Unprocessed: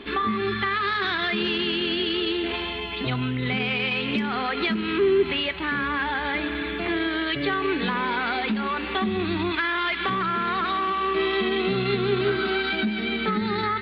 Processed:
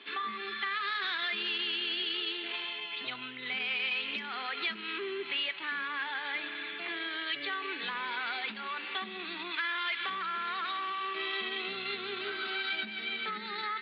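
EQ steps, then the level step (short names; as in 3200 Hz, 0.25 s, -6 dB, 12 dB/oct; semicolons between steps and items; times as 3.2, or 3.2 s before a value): Chebyshev high-pass 190 Hz, order 2; air absorption 230 m; differentiator; +7.5 dB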